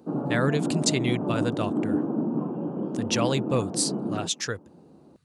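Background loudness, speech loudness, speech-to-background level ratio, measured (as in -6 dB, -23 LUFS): -29.0 LUFS, -28.0 LUFS, 1.0 dB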